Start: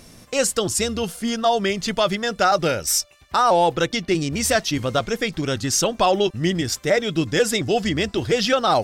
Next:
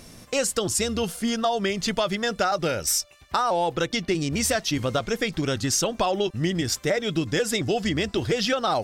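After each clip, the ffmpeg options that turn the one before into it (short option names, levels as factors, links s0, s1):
-af "acompressor=threshold=0.1:ratio=6"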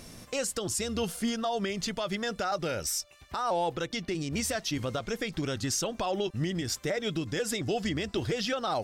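-af "alimiter=limit=0.112:level=0:latency=1:release=277,volume=0.841"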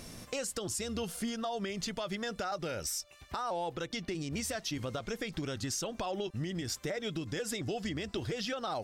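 -af "acompressor=threshold=0.0178:ratio=2.5"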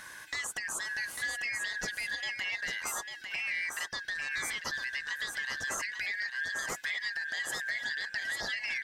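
-filter_complex "[0:a]afftfilt=real='real(if(lt(b,272),68*(eq(floor(b/68),0)*3+eq(floor(b/68),1)*0+eq(floor(b/68),2)*1+eq(floor(b/68),3)*2)+mod(b,68),b),0)':imag='imag(if(lt(b,272),68*(eq(floor(b/68),0)*3+eq(floor(b/68),1)*0+eq(floor(b/68),2)*1+eq(floor(b/68),3)*2)+mod(b,68),b),0)':win_size=2048:overlap=0.75,asplit=2[s0][s1];[s1]aecho=0:1:848:0.473[s2];[s0][s2]amix=inputs=2:normalize=0"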